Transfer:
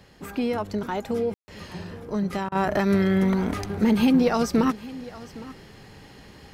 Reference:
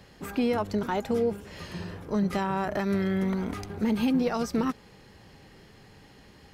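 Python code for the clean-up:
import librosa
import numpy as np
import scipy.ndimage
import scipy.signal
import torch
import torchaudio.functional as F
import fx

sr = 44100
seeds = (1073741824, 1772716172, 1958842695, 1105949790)

y = fx.fix_ambience(x, sr, seeds[0], print_start_s=6.02, print_end_s=6.52, start_s=1.34, end_s=1.48)
y = fx.fix_interpolate(y, sr, at_s=(2.49,), length_ms=27.0)
y = fx.fix_echo_inverse(y, sr, delay_ms=811, level_db=-18.5)
y = fx.gain(y, sr, db=fx.steps((0.0, 0.0), (2.55, -6.0)))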